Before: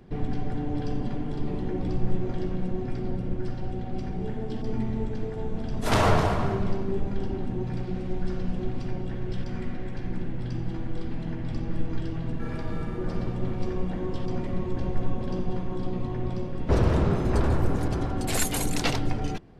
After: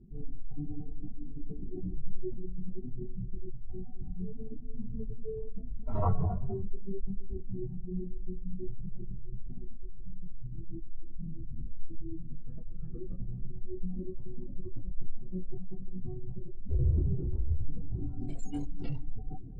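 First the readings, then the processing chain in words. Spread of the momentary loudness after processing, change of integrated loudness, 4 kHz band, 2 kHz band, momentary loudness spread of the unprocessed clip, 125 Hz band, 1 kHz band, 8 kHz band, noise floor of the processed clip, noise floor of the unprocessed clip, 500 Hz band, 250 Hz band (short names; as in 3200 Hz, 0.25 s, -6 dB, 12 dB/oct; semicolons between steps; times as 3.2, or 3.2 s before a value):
14 LU, -10.0 dB, under -30 dB, under -30 dB, 9 LU, -8.0 dB, -15.0 dB, under -25 dB, -40 dBFS, -33 dBFS, -13.0 dB, -11.5 dB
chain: spectral contrast raised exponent 2.7; chorus voices 4, 0.17 Hz, delay 24 ms, depth 3.7 ms; LPF 6700 Hz 24 dB/oct; reverse; upward compressor, threshold -27 dBFS; reverse; de-hum 277.7 Hz, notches 13; gain -3 dB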